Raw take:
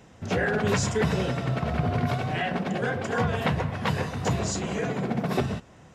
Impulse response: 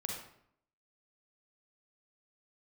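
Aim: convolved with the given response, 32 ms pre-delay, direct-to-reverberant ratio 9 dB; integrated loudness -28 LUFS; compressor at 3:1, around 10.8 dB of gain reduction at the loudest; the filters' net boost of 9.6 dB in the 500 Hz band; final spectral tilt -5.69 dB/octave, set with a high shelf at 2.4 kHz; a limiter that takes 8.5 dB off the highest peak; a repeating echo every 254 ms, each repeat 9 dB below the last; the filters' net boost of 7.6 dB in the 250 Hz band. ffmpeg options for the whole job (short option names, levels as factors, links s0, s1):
-filter_complex "[0:a]equalizer=f=250:t=o:g=8,equalizer=f=500:t=o:g=9,highshelf=f=2400:g=6.5,acompressor=threshold=0.0398:ratio=3,alimiter=limit=0.0841:level=0:latency=1,aecho=1:1:254|508|762|1016:0.355|0.124|0.0435|0.0152,asplit=2[s0][s1];[1:a]atrim=start_sample=2205,adelay=32[s2];[s1][s2]afir=irnorm=-1:irlink=0,volume=0.316[s3];[s0][s3]amix=inputs=2:normalize=0,volume=1.26"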